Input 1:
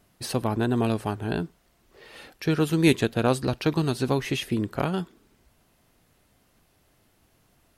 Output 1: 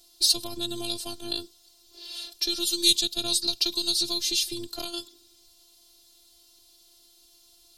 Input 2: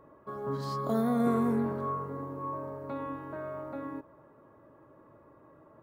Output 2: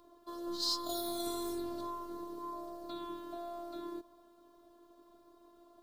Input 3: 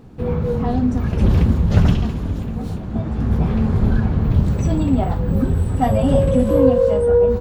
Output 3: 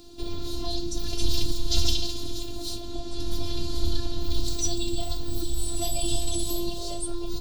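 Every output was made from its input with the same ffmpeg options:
-filter_complex "[0:a]highshelf=f=2.8k:t=q:w=3:g=13.5,afftfilt=real='hypot(re,im)*cos(PI*b)':imag='0':win_size=512:overlap=0.75,acrossover=split=160|3000[a][b][c];[b]acompressor=threshold=-38dB:ratio=3[d];[a][d][c]amix=inputs=3:normalize=0"

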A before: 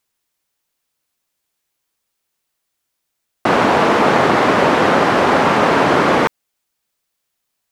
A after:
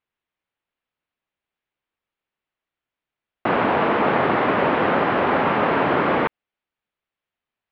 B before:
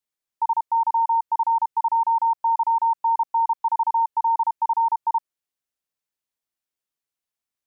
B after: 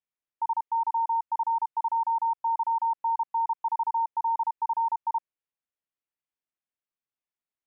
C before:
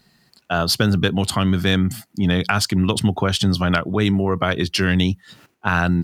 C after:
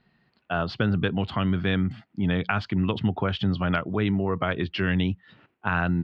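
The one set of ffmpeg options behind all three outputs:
-af "lowpass=f=3.1k:w=0.5412,lowpass=f=3.1k:w=1.3066,volume=-6dB"

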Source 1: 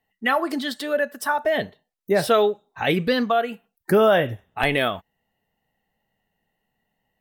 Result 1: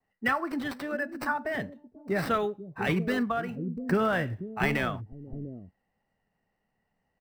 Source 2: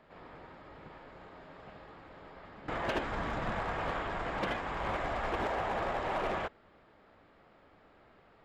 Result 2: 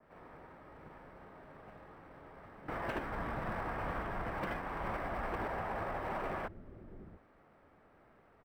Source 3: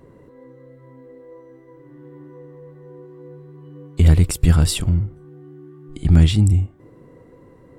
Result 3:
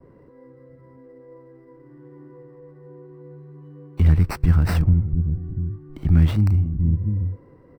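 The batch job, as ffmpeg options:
-filter_complex "[0:a]adynamicequalizer=threshold=0.00708:dfrequency=3800:dqfactor=0.93:tfrequency=3800:tqfactor=0.93:attack=5:release=100:ratio=0.375:range=3.5:mode=cutabove:tftype=bell,acrossover=split=330|960|3000[a][b][c][d];[a]aecho=1:1:488|694:0.266|0.562[e];[b]acompressor=threshold=-38dB:ratio=6[f];[d]acrusher=samples=13:mix=1:aa=0.000001[g];[e][f][c][g]amix=inputs=4:normalize=0,volume=-3dB"

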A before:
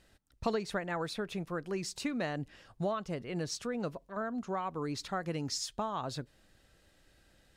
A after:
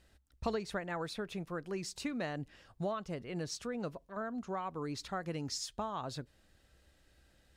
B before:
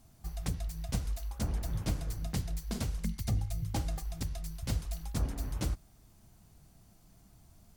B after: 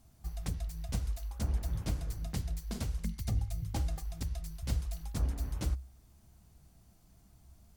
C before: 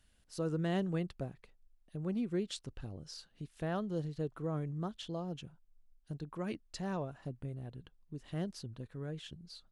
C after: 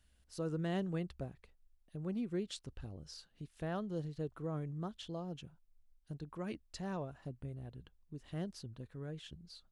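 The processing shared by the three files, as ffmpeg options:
-af "equalizer=f=65:w=5.3:g=11.5,volume=-3dB"

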